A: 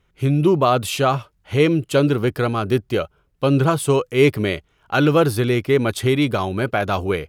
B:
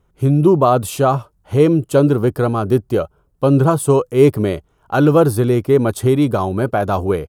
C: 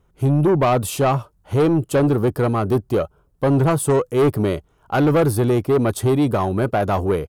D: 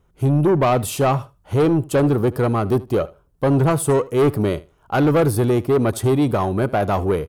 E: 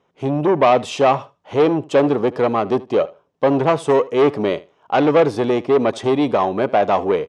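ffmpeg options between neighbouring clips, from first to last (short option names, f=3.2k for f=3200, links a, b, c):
-af "firequalizer=gain_entry='entry(970,0);entry(2100,-13);entry(8500,-1)':delay=0.05:min_phase=1,volume=4dB"
-af "asoftclip=type=tanh:threshold=-11.5dB"
-af "aecho=1:1:77|154:0.0944|0.0151"
-af "highpass=310,equalizer=f=350:t=q:w=4:g=-5,equalizer=f=1.4k:t=q:w=4:g=-7,equalizer=f=4.5k:t=q:w=4:g=-6,lowpass=f=5.5k:w=0.5412,lowpass=f=5.5k:w=1.3066,volume=5.5dB"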